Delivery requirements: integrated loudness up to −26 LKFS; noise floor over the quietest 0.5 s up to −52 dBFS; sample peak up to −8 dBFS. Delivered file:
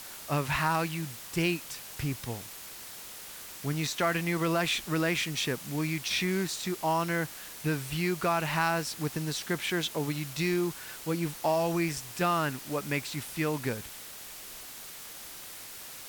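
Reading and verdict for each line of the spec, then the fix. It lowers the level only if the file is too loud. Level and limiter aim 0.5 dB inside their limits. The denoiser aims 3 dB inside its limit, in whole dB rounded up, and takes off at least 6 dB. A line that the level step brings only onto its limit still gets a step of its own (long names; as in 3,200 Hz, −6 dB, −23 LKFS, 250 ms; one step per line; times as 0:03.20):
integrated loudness −30.5 LKFS: in spec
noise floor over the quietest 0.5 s −45 dBFS: out of spec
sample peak −14.5 dBFS: in spec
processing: broadband denoise 10 dB, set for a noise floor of −45 dBFS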